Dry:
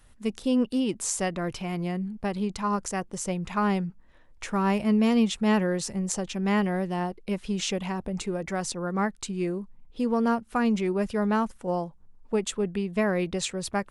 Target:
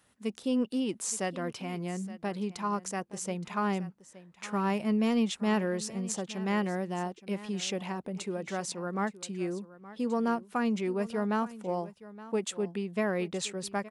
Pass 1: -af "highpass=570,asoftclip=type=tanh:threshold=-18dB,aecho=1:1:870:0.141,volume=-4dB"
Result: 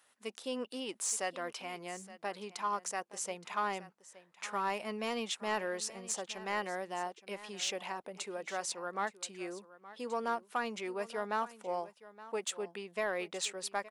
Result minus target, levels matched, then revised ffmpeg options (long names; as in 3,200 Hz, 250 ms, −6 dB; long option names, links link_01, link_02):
125 Hz band −12.0 dB; soft clipping: distortion +16 dB
-af "highpass=160,asoftclip=type=tanh:threshold=-8dB,aecho=1:1:870:0.141,volume=-4dB"